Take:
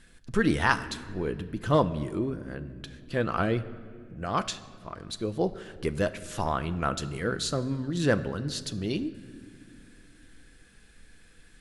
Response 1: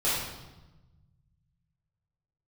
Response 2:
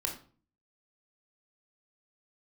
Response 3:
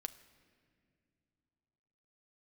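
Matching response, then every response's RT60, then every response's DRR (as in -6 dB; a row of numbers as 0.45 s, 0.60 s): 3; 1.1 s, 0.40 s, no single decay rate; -11.0 dB, 1.5 dB, 10.0 dB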